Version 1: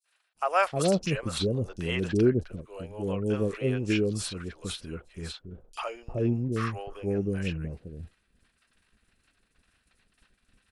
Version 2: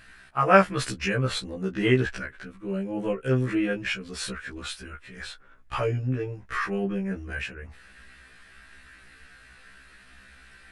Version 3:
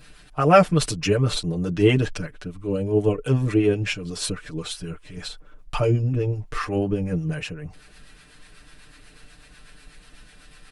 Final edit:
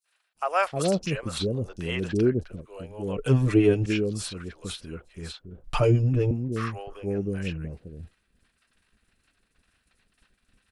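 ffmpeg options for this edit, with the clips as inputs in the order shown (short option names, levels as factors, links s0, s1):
-filter_complex "[2:a]asplit=2[s0][s1];[0:a]asplit=3[s2][s3][s4];[s2]atrim=end=3.172[s5];[s0]atrim=start=3.168:end=3.862[s6];[s3]atrim=start=3.858:end=5.642[s7];[s1]atrim=start=5.638:end=6.312[s8];[s4]atrim=start=6.308[s9];[s5][s6]acrossfade=d=0.004:c1=hsin:c2=hsin[s10];[s10][s7]acrossfade=d=0.004:c1=hsin:c2=hsin[s11];[s11][s8]acrossfade=d=0.004:c1=hsin:c2=hsin[s12];[s12][s9]acrossfade=d=0.004:c1=hsin:c2=hsin"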